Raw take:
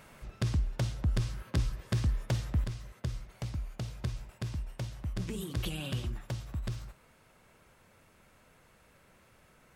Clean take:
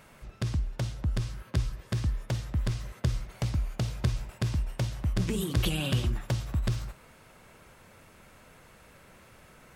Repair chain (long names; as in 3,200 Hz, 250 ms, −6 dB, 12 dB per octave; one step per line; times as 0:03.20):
clipped peaks rebuilt −22 dBFS
level correction +7.5 dB, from 0:02.64